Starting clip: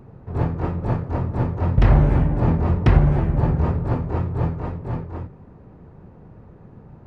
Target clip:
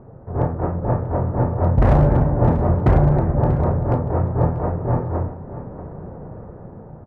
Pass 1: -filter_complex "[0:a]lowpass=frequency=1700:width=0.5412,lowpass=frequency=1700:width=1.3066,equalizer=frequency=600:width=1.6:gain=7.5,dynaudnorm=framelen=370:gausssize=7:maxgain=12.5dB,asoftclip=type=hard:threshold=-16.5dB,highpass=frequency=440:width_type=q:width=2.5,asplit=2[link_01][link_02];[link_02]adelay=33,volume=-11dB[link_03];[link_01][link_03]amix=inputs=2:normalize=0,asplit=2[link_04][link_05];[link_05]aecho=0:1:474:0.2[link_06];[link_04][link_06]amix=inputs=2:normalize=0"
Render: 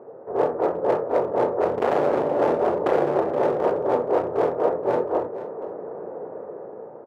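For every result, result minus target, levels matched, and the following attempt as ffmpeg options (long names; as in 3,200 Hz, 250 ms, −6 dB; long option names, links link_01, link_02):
500 Hz band +7.5 dB; hard clipping: distortion +10 dB; echo 164 ms early
-filter_complex "[0:a]lowpass=frequency=1700:width=0.5412,lowpass=frequency=1700:width=1.3066,equalizer=frequency=600:width=1.6:gain=7.5,dynaudnorm=framelen=370:gausssize=7:maxgain=12.5dB,asoftclip=type=hard:threshold=-16.5dB,asplit=2[link_01][link_02];[link_02]adelay=33,volume=-11dB[link_03];[link_01][link_03]amix=inputs=2:normalize=0,asplit=2[link_04][link_05];[link_05]aecho=0:1:474:0.2[link_06];[link_04][link_06]amix=inputs=2:normalize=0"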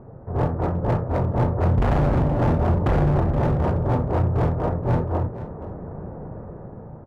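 hard clipping: distortion +10 dB; echo 164 ms early
-filter_complex "[0:a]lowpass=frequency=1700:width=0.5412,lowpass=frequency=1700:width=1.3066,equalizer=frequency=600:width=1.6:gain=7.5,dynaudnorm=framelen=370:gausssize=7:maxgain=12.5dB,asoftclip=type=hard:threshold=-8dB,asplit=2[link_01][link_02];[link_02]adelay=33,volume=-11dB[link_03];[link_01][link_03]amix=inputs=2:normalize=0,asplit=2[link_04][link_05];[link_05]aecho=0:1:474:0.2[link_06];[link_04][link_06]amix=inputs=2:normalize=0"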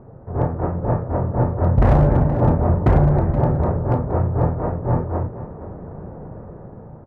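echo 164 ms early
-filter_complex "[0:a]lowpass=frequency=1700:width=0.5412,lowpass=frequency=1700:width=1.3066,equalizer=frequency=600:width=1.6:gain=7.5,dynaudnorm=framelen=370:gausssize=7:maxgain=12.5dB,asoftclip=type=hard:threshold=-8dB,asplit=2[link_01][link_02];[link_02]adelay=33,volume=-11dB[link_03];[link_01][link_03]amix=inputs=2:normalize=0,asplit=2[link_04][link_05];[link_05]aecho=0:1:638:0.2[link_06];[link_04][link_06]amix=inputs=2:normalize=0"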